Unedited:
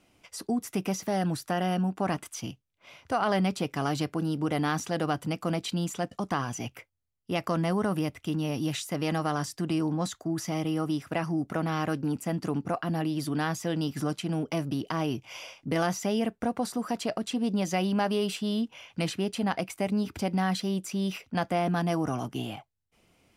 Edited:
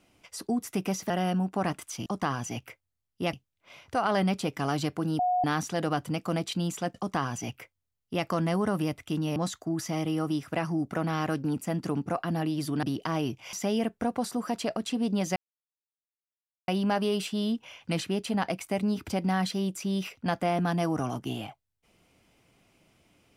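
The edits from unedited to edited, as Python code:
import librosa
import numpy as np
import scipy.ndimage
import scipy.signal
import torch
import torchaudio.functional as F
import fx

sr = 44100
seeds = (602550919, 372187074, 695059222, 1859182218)

y = fx.edit(x, sr, fx.cut(start_s=1.1, length_s=0.44),
    fx.bleep(start_s=4.36, length_s=0.25, hz=725.0, db=-22.5),
    fx.duplicate(start_s=6.15, length_s=1.27, to_s=2.5),
    fx.cut(start_s=8.53, length_s=1.42),
    fx.cut(start_s=13.42, length_s=1.26),
    fx.cut(start_s=15.38, length_s=0.56),
    fx.insert_silence(at_s=17.77, length_s=1.32), tone=tone)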